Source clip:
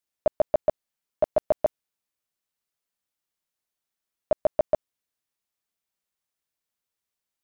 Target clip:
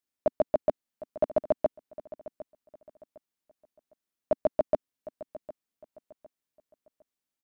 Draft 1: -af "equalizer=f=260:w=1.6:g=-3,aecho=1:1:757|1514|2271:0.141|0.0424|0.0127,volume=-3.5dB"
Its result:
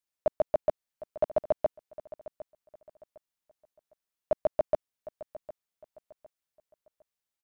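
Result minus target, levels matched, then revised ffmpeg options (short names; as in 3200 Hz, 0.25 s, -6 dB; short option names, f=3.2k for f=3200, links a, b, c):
250 Hz band -7.0 dB
-af "equalizer=f=260:w=1.6:g=8,aecho=1:1:757|1514|2271:0.141|0.0424|0.0127,volume=-3.5dB"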